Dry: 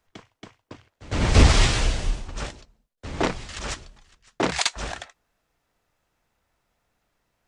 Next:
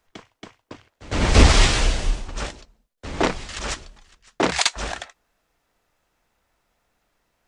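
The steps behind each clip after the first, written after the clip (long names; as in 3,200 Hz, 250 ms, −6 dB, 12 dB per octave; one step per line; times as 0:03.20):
parametric band 110 Hz −5 dB 1.3 octaves
level +3.5 dB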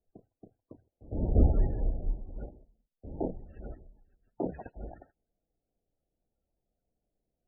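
running median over 41 samples
spectral peaks only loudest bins 32
level −9 dB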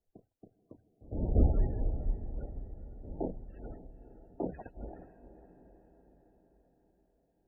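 feedback delay with all-pass diffusion 482 ms, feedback 57%, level −13.5 dB
level −2.5 dB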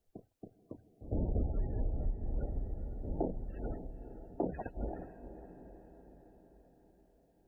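downward compressor 8 to 1, threshold −35 dBFS, peak gain reduction 16.5 dB
level +5.5 dB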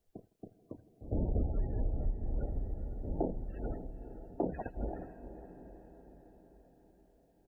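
repeating echo 80 ms, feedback 51%, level −22 dB
level +1 dB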